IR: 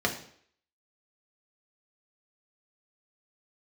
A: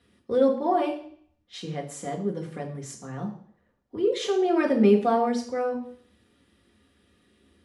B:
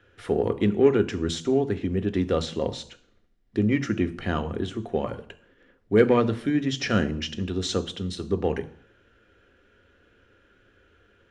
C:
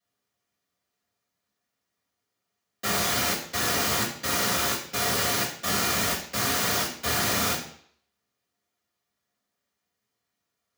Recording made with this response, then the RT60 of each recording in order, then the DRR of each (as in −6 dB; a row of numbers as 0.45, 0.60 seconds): A; 0.60, 0.60, 0.60 seconds; 0.0, 10.0, −9.0 decibels